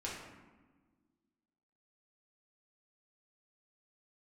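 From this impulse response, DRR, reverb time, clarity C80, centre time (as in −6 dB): −6.0 dB, 1.4 s, 4.0 dB, 65 ms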